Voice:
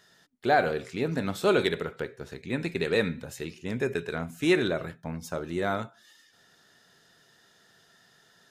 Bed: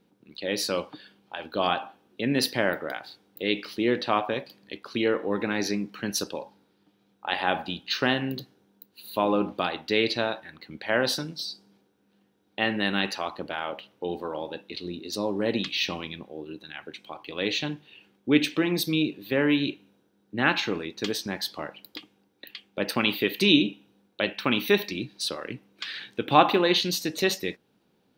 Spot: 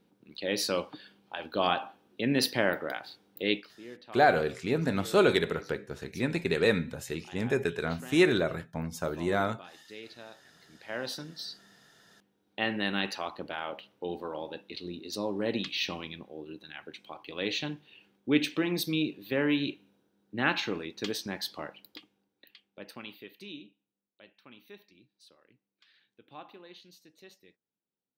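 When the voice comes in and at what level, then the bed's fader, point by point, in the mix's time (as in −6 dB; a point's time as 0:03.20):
3.70 s, +0.5 dB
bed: 0:03.53 −2 dB
0:03.75 −22 dB
0:10.17 −22 dB
0:11.58 −4.5 dB
0:21.68 −4.5 dB
0:23.86 −29 dB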